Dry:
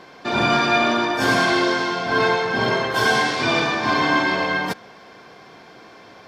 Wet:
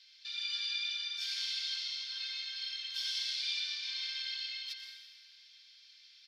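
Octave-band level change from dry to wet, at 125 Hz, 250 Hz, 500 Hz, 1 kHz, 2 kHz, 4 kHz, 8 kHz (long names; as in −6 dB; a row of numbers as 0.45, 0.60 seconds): below −40 dB, below −40 dB, below −40 dB, below −40 dB, −24.0 dB, −7.5 dB, −13.0 dB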